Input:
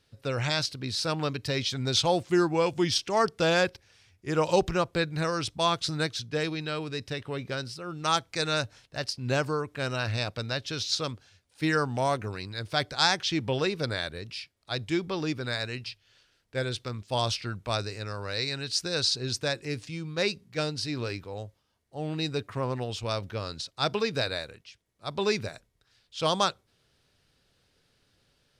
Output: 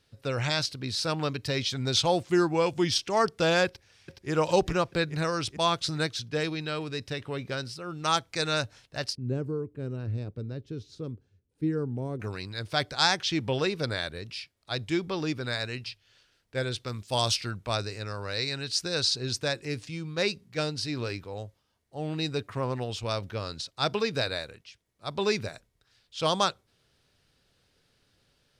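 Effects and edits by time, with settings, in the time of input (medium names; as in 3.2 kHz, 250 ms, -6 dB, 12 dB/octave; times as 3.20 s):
3.66–4.30 s: echo throw 420 ms, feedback 60%, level -4 dB
9.15–12.20 s: FFT filter 430 Hz 0 dB, 640 Hz -16 dB, 5.4 kHz -26 dB, 8.4 kHz -21 dB
16.88–17.51 s: treble shelf 5.4 kHz +10.5 dB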